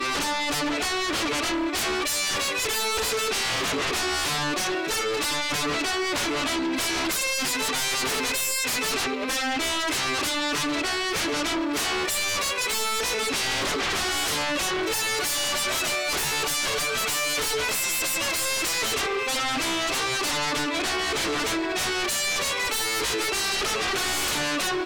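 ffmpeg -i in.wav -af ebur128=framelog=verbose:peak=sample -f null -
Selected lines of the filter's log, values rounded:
Integrated loudness:
  I:         -24.2 LUFS
  Threshold: -34.2 LUFS
Loudness range:
  LRA:         0.9 LU
  Threshold: -44.2 LUFS
  LRA low:   -24.6 LUFS
  LRA high:  -23.7 LUFS
Sample peak:
  Peak:      -21.1 dBFS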